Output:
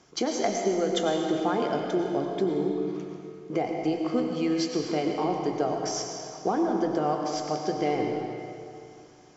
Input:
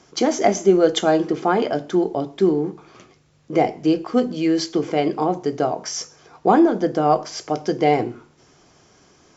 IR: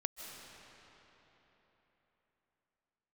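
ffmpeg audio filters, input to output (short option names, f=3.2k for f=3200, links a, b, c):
-filter_complex "[0:a]acompressor=threshold=-17dB:ratio=6[a];[1:a]atrim=start_sample=2205,asetrate=70560,aresample=44100[b];[a][b]afir=irnorm=-1:irlink=0"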